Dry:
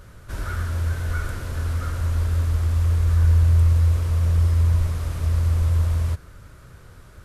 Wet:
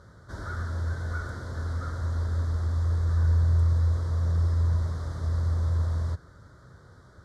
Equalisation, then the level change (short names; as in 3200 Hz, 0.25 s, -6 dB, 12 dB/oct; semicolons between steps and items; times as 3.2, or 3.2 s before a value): HPF 78 Hz; Butterworth band-stop 2600 Hz, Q 1.4; LPF 5400 Hz 12 dB/oct; -3.5 dB